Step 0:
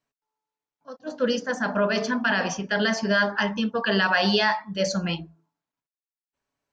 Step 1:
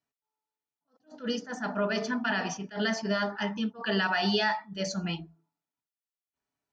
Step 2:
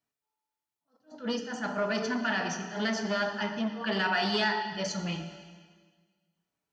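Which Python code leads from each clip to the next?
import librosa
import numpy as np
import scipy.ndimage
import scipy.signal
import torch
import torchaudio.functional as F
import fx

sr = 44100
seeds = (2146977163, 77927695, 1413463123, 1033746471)

y1 = fx.notch_comb(x, sr, f0_hz=540.0)
y1 = fx.attack_slew(y1, sr, db_per_s=220.0)
y1 = y1 * librosa.db_to_amplitude(-4.5)
y2 = fx.rev_plate(y1, sr, seeds[0], rt60_s=1.6, hf_ratio=0.95, predelay_ms=0, drr_db=5.5)
y2 = fx.transformer_sat(y2, sr, knee_hz=890.0)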